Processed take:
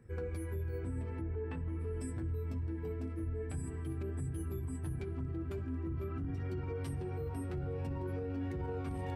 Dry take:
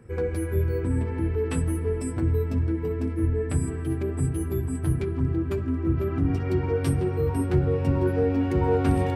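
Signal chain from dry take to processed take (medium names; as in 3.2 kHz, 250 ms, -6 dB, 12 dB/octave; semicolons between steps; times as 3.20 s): flange 0.47 Hz, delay 0.5 ms, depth 1.1 ms, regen +65%; peak limiter -25 dBFS, peak gain reduction 11 dB; 1.20–1.79 s: low-pass 1.6 kHz -> 2.9 kHz 12 dB/octave; trim -6 dB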